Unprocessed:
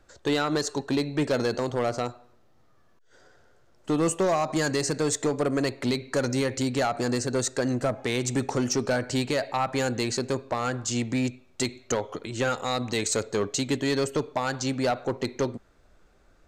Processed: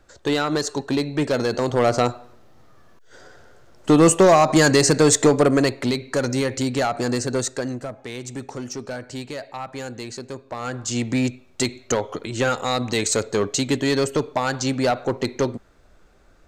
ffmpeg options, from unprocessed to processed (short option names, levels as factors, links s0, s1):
-af "volume=11.9,afade=t=in:st=1.48:d=0.61:silence=0.446684,afade=t=out:st=5.29:d=0.62:silence=0.446684,afade=t=out:st=7.34:d=0.53:silence=0.334965,afade=t=in:st=10.44:d=0.71:silence=0.281838"